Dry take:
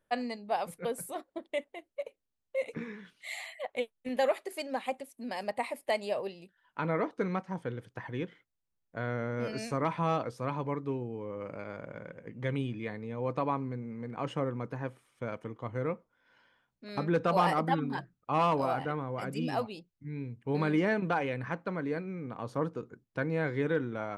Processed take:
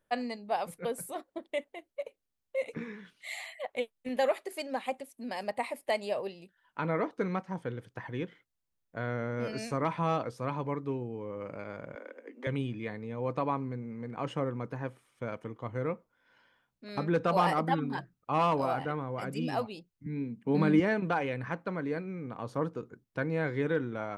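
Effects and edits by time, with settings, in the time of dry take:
11.95–12.47 steep high-pass 240 Hz 96 dB/oct
20.06–20.8 resonant high-pass 200 Hz

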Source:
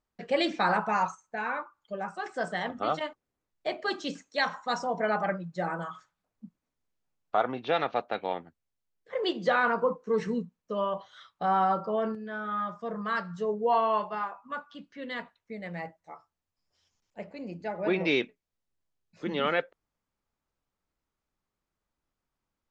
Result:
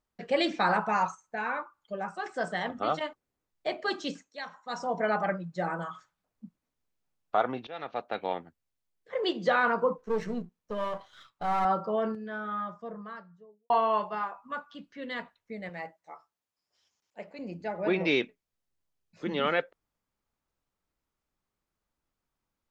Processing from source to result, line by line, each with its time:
4.08–4.91 dip -12 dB, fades 0.28 s
7.67–8.24 fade in, from -21.5 dB
9.98–11.65 half-wave gain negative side -7 dB
12.21–13.7 studio fade out
15.69–17.39 HPF 380 Hz 6 dB/oct

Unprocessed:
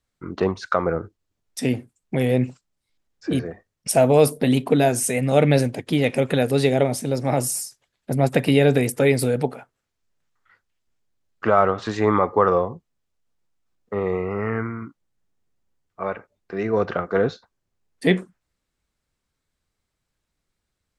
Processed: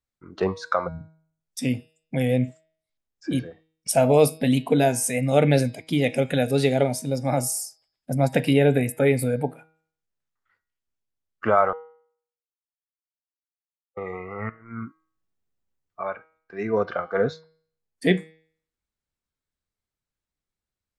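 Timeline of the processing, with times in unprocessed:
0.88–1.4 spectral delete 310–5800 Hz
8.53–9.56 bell 5500 Hz -13 dB 0.87 oct
11.73–13.97 mute
14.49–16.02 negative-ratio compressor -32 dBFS, ratio -0.5
whole clip: spectral noise reduction 10 dB; de-hum 159.3 Hz, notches 33; gain -1.5 dB

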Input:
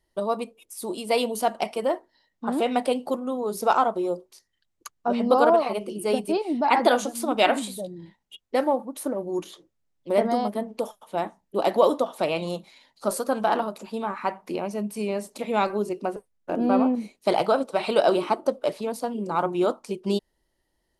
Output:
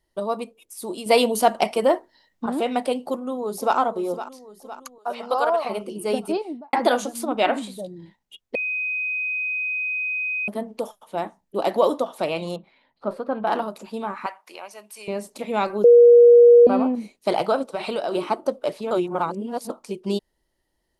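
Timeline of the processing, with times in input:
1.06–2.46 gain +6 dB
3.05–3.77 echo throw 0.51 s, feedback 60%, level -12.5 dB
4.98–5.65 HPF 650 Hz
6.31–6.73 studio fade out
7.24–7.78 high shelf 4100 Hz -> 7100 Hz -11.5 dB
8.55–10.48 bleep 2510 Hz -23 dBFS
12.56–13.47 air absorption 440 m
14.26–15.08 HPF 990 Hz
15.84–16.67 bleep 477 Hz -7 dBFS
17.67–18.15 compressor, threshold -22 dBFS
18.91–19.7 reverse

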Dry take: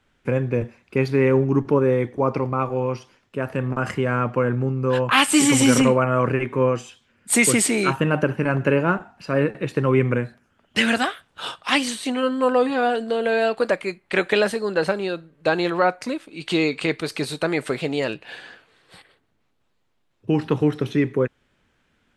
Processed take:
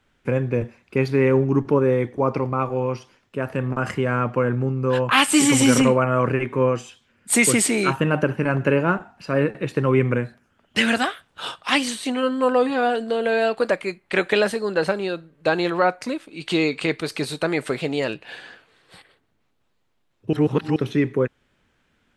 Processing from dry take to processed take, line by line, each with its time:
20.33–20.76 reverse

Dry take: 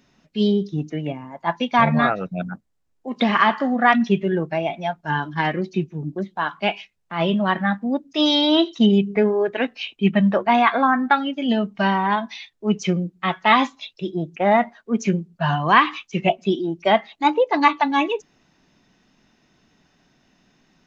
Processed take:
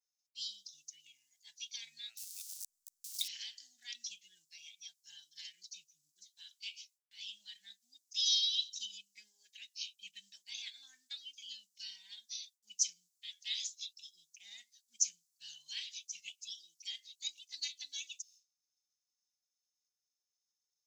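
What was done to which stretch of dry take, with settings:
2.17–3.28 zero-crossing step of -33 dBFS
whole clip: expander -46 dBFS; inverse Chebyshev high-pass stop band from 1300 Hz, stop band 70 dB; gain +8 dB

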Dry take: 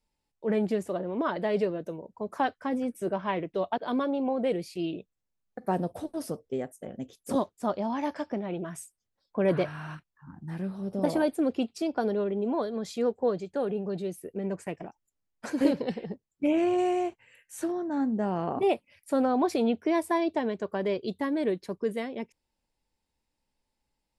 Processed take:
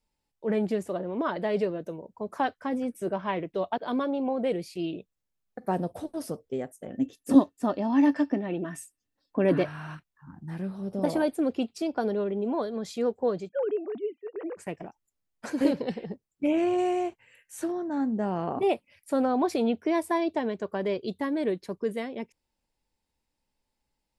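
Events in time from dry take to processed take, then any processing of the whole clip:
6.9–9.64 small resonant body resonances 280/1800/2700 Hz, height 15 dB, ringing for 85 ms
13.49–14.57 sine-wave speech

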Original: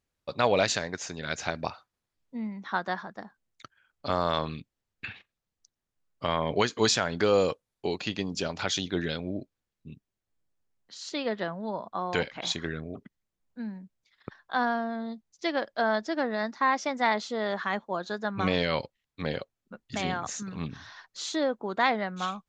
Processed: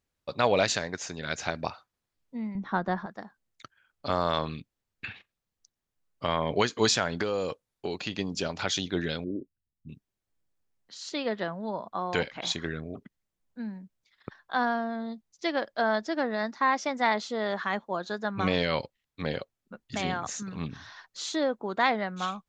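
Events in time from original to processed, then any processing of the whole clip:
2.55–3.06 tilt -3.5 dB/oct
7.22–8.19 compressor 3:1, threshold -27 dBFS
9.24–9.89 formant sharpening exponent 3

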